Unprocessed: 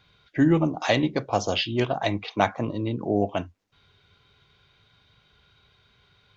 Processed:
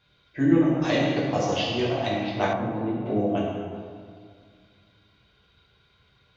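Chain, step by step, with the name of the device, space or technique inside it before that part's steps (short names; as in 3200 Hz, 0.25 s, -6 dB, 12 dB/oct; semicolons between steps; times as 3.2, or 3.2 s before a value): stairwell (reverb RT60 2.0 s, pre-delay 6 ms, DRR -5.5 dB); 2.53–3.06 LPF 1100 Hz 6 dB/oct; gain -7.5 dB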